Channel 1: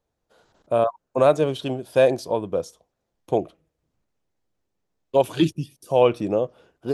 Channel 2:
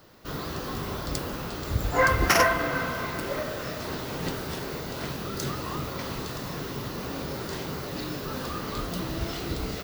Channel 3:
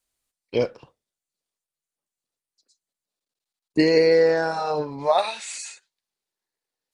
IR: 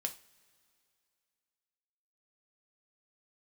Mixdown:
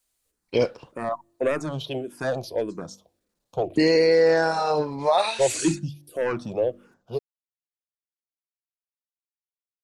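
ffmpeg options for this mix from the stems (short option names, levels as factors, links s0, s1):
-filter_complex "[0:a]bandreject=f=48.93:t=h:w=4,bandreject=f=97.86:t=h:w=4,bandreject=f=146.79:t=h:w=4,bandreject=f=195.72:t=h:w=4,bandreject=f=244.65:t=h:w=4,bandreject=f=293.58:t=h:w=4,bandreject=f=342.51:t=h:w=4,asoftclip=type=tanh:threshold=0.224,asplit=2[s0][s1];[s1]afreqshift=-1.7[s2];[s0][s2]amix=inputs=2:normalize=1,adelay=250,volume=1,asplit=2[s3][s4];[s4]volume=0.0631[s5];[2:a]highshelf=f=7100:g=5.5,alimiter=limit=0.237:level=0:latency=1:release=11,volume=1.26[s6];[3:a]atrim=start_sample=2205[s7];[s5][s7]afir=irnorm=-1:irlink=0[s8];[s3][s6][s8]amix=inputs=3:normalize=0"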